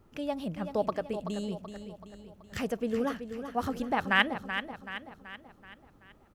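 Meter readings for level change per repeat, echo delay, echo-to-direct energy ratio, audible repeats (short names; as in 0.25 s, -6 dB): -6.0 dB, 0.38 s, -8.5 dB, 5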